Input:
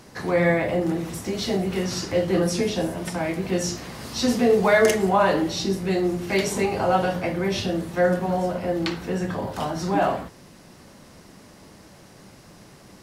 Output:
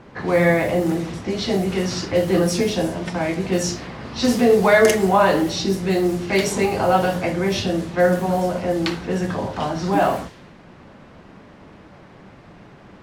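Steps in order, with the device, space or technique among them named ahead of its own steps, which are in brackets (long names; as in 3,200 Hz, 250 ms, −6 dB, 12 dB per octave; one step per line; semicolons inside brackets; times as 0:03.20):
cassette deck with a dynamic noise filter (white noise bed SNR 23 dB; low-pass that shuts in the quiet parts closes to 1,500 Hz, open at −19 dBFS)
level +3.5 dB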